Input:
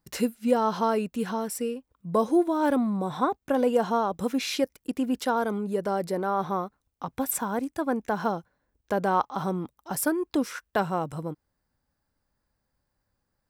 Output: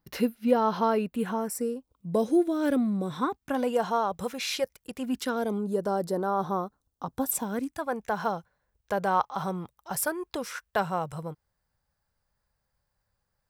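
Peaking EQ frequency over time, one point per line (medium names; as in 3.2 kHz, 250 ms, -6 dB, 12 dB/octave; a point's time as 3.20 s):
peaking EQ -14.5 dB 0.61 oct
1.01 s 7.7 kHz
2.32 s 940 Hz
3.01 s 940 Hz
3.83 s 280 Hz
4.97 s 280 Hz
5.64 s 2.3 kHz
7.26 s 2.3 kHz
7.89 s 280 Hz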